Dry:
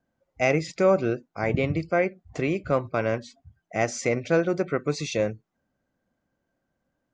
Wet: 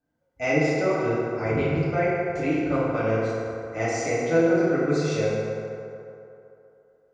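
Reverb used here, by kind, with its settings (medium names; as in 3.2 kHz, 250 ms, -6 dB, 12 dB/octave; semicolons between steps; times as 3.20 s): FDN reverb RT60 2.9 s, low-frequency decay 0.7×, high-frequency decay 0.45×, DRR -9 dB; trim -8.5 dB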